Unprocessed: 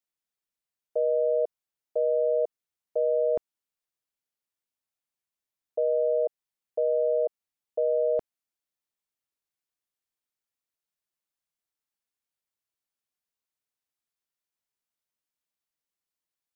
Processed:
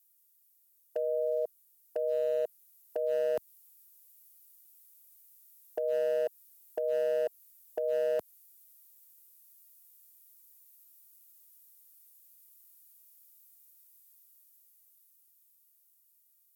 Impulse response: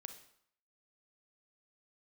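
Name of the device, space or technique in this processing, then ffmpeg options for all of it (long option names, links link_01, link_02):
FM broadcast chain: -filter_complex "[0:a]highpass=75,dynaudnorm=framelen=390:gausssize=13:maxgain=8dB,acrossover=split=230|790[link_01][link_02][link_03];[link_01]acompressor=threshold=-53dB:ratio=4[link_04];[link_02]acompressor=threshold=-30dB:ratio=4[link_05];[link_03]acompressor=threshold=-34dB:ratio=4[link_06];[link_04][link_05][link_06]amix=inputs=3:normalize=0,aemphasis=mode=production:type=50fm,alimiter=limit=-20.5dB:level=0:latency=1:release=172,asoftclip=type=hard:threshold=-22.5dB,lowpass=frequency=15000:width=0.5412,lowpass=frequency=15000:width=1.3066,aemphasis=mode=production:type=50fm,volume=-1.5dB"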